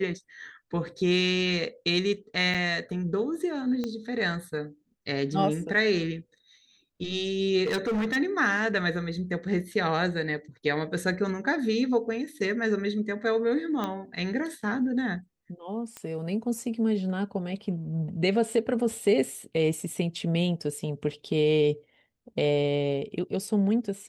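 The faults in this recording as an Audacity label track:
2.540000	2.550000	drop-out 6.6 ms
3.840000	3.840000	click −19 dBFS
7.660000	8.170000	clipping −24 dBFS
13.840000	13.840000	click −17 dBFS
15.970000	15.970000	click −22 dBFS

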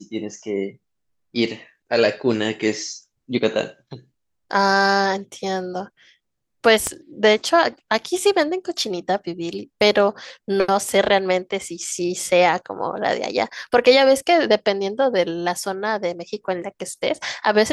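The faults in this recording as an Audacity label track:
6.870000	6.870000	click −8 dBFS

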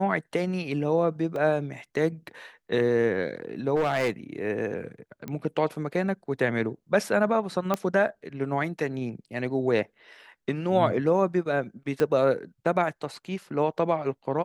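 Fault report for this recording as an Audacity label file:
1.360000	1.360000	drop-out 2.1 ms
3.750000	4.100000	clipping −20.5 dBFS
5.280000	5.280000	click −21 dBFS
7.740000	7.740000	click −12 dBFS
12.000000	12.000000	click −14 dBFS

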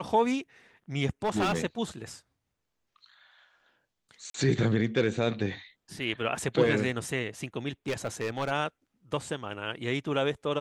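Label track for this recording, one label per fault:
1.240000	1.600000	clipping −23 dBFS
4.300000	4.340000	drop-out 43 ms
7.880000	8.520000	clipping −25 dBFS

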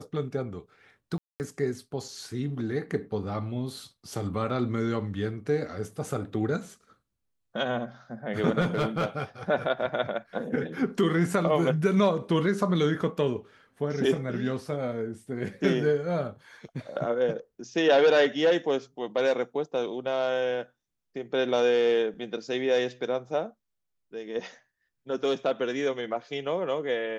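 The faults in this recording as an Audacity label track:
1.180000	1.400000	drop-out 219 ms
8.600000	9.220000	clipping −21 dBFS

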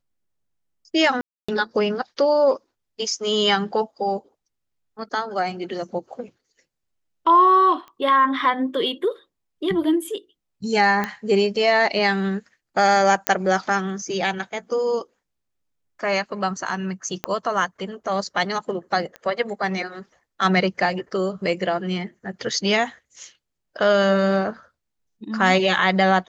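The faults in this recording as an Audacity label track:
1.210000	1.490000	drop-out 275 ms
7.880000	7.880000	click −28 dBFS
11.040000	11.040000	click −11 dBFS
13.270000	13.270000	click −1 dBFS
17.240000	17.240000	click −9 dBFS
19.160000	19.160000	click −21 dBFS

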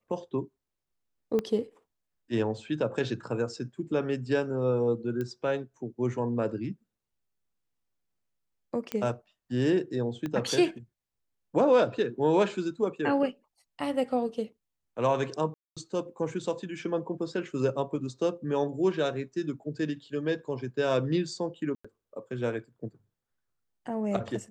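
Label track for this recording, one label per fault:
1.390000	1.390000	click −17 dBFS
5.210000	5.210000	click −22 dBFS
8.920000	8.920000	click −17 dBFS
10.260000	10.260000	click −21 dBFS
15.540000	15.770000	drop-out 226 ms
21.750000	21.840000	drop-out 95 ms

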